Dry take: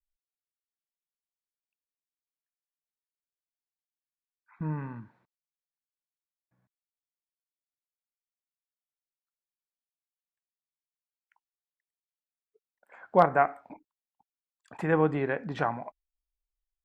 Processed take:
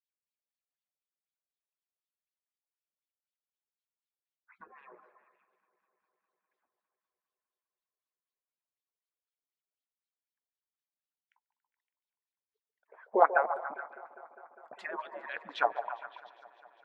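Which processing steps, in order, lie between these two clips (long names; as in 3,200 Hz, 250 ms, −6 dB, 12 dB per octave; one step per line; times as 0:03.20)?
harmonic-percussive split with one part muted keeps percussive
LFO wah 4 Hz 430–3,900 Hz, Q 3.2
echo through a band-pass that steps 141 ms, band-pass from 630 Hz, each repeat 0.7 octaves, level −7.5 dB
on a send at −23.5 dB: convolution reverb RT60 0.25 s, pre-delay 3 ms
on the sum: feedback echo with a swinging delay time 202 ms, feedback 78%, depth 52 cents, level −21.5 dB
level +7.5 dB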